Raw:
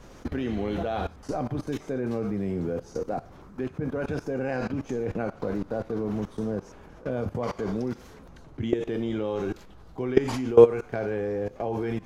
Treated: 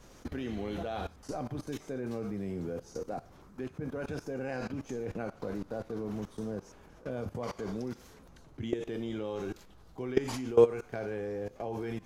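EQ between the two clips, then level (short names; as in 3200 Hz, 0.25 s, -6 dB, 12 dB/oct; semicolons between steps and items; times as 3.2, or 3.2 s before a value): high shelf 4100 Hz +8.5 dB; -7.5 dB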